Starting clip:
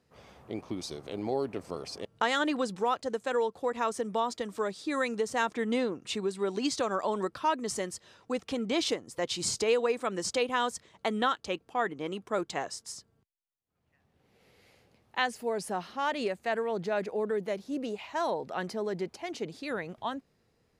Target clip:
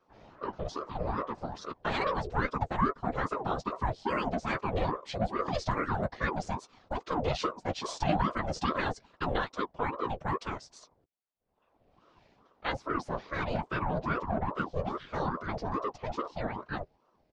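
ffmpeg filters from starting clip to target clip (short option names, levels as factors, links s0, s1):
-filter_complex "[0:a]lowpass=f=5700:w=0.5412,lowpass=f=5700:w=1.3066,equalizer=f=310:w=0.89:g=13,atempo=1.2,acrossover=split=120|580|4200[s0][s1][s2][s3];[s1]asoftclip=type=tanh:threshold=0.0596[s4];[s0][s4][s2][s3]amix=inputs=4:normalize=0,afftfilt=real='hypot(re,im)*cos(2*PI*random(0))':imag='hypot(re,im)*sin(2*PI*random(1))':win_size=512:overlap=0.75,asplit=2[s5][s6];[s6]adelay=13,volume=0.282[s7];[s5][s7]amix=inputs=2:normalize=0,aeval=exprs='val(0)*sin(2*PI*530*n/s+530*0.6/2.4*sin(2*PI*2.4*n/s))':c=same,volume=1.41"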